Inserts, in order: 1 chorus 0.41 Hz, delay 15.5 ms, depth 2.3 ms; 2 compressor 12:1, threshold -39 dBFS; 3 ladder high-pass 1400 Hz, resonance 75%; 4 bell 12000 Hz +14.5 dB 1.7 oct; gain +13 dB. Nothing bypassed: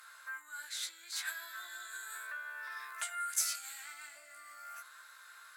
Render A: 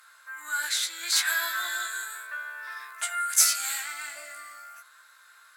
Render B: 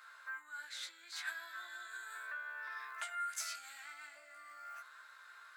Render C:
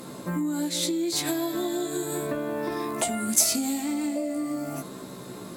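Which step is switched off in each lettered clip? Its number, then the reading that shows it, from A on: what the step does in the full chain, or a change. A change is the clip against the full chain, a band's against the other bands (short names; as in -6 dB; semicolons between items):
2, mean gain reduction 9.0 dB; 4, 8 kHz band -9.0 dB; 3, 500 Hz band +24.0 dB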